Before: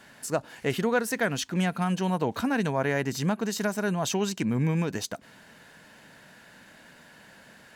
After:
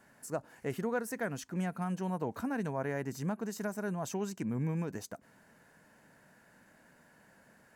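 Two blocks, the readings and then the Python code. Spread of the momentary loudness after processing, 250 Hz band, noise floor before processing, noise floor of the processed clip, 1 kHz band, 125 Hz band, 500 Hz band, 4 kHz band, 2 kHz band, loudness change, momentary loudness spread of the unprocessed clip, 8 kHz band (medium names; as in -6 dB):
6 LU, -8.0 dB, -53 dBFS, -64 dBFS, -9.0 dB, -8.0 dB, -8.5 dB, -17.5 dB, -11.0 dB, -8.5 dB, 6 LU, -11.0 dB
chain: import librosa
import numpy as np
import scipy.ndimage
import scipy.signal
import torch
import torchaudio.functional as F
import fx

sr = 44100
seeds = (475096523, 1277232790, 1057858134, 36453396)

y = fx.peak_eq(x, sr, hz=3500.0, db=-12.0, octaves=1.2)
y = y * 10.0 ** (-8.0 / 20.0)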